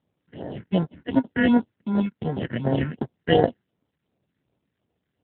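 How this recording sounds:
aliases and images of a low sample rate 1,200 Hz, jitter 0%
phaser sweep stages 4, 2.7 Hz, lowest notch 650–2,700 Hz
AMR narrowband

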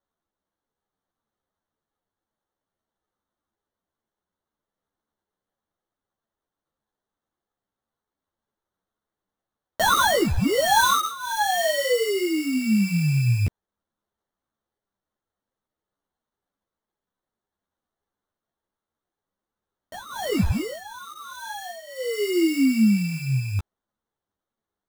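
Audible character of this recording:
phaser sweep stages 4, 0.54 Hz, lowest notch 600–1,600 Hz
aliases and images of a low sample rate 2,500 Hz, jitter 0%
a shimmering, thickened sound

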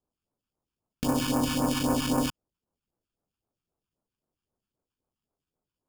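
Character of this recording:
aliases and images of a low sample rate 2,000 Hz, jitter 0%
phaser sweep stages 2, 3.8 Hz, lowest notch 540–3,300 Hz

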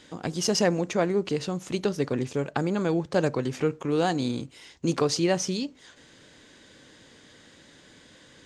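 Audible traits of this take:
background noise floor −54 dBFS
spectral slope −5.0 dB per octave

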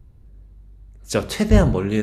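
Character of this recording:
background noise floor −47 dBFS
spectral slope −6.5 dB per octave

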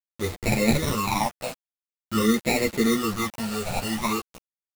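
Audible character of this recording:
aliases and images of a low sample rate 1,600 Hz, jitter 0%
phaser sweep stages 12, 0.48 Hz, lowest notch 330–1,100 Hz
a quantiser's noise floor 6 bits, dither none
a shimmering, thickened sound

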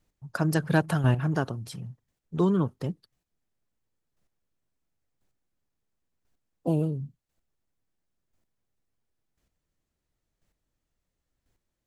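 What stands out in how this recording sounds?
chopped level 0.96 Hz, depth 60%, duty 10%

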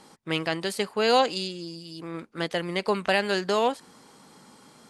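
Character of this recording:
background noise floor −54 dBFS
spectral slope −4.0 dB per octave

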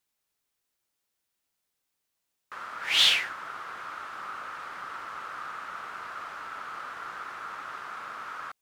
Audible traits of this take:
background noise floor −82 dBFS
spectral slope +1.5 dB per octave

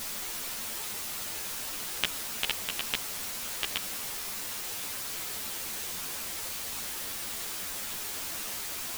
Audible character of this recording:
sample-and-hold tremolo, depth 55%
a quantiser's noise floor 6 bits, dither triangular
a shimmering, thickened sound

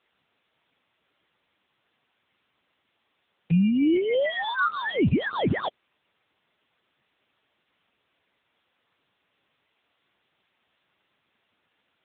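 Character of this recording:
aliases and images of a low sample rate 2,600 Hz, jitter 0%
phaser sweep stages 8, 3.4 Hz, lowest notch 680–1,900 Hz
a quantiser's noise floor 12 bits, dither triangular
AMR narrowband

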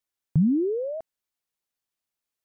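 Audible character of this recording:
background noise floor −88 dBFS
spectral slope −3.0 dB per octave

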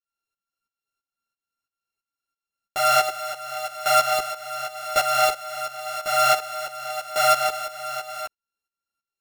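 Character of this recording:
a buzz of ramps at a fixed pitch in blocks of 32 samples
tremolo saw up 3 Hz, depth 80%
a shimmering, thickened sound

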